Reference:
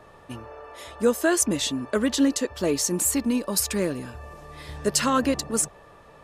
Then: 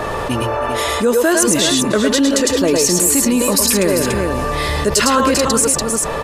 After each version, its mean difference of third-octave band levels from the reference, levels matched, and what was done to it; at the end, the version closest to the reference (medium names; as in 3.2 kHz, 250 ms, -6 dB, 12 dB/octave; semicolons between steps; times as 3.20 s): 9.5 dB: peaking EQ 110 Hz -3 dB 1.9 oct; on a send: multi-tap echo 105/107/315/395 ms -8/-4.5/-17.5/-12 dB; on the sum: level flattener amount 70%; trim +4.5 dB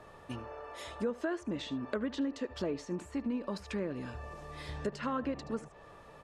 6.5 dB: compression 3:1, threshold -30 dBFS, peak gain reduction 11 dB; on a send: delay 75 ms -19.5 dB; on the sum: low-pass that closes with the level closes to 2 kHz, closed at -27 dBFS; trim -3.5 dB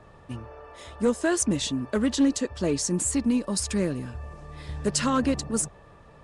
3.5 dB: tone controls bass +8 dB, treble +1 dB; one-sided clip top -13 dBFS; trim -3.5 dB; Nellymoser 44 kbps 22.05 kHz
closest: third